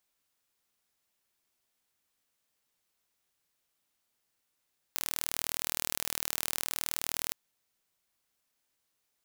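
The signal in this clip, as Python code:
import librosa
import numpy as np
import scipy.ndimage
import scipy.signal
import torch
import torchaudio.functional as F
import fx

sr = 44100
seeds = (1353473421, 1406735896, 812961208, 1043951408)

y = 10.0 ** (-5.0 / 20.0) * (np.mod(np.arange(round(2.37 * sr)), round(sr / 39.4)) == 0)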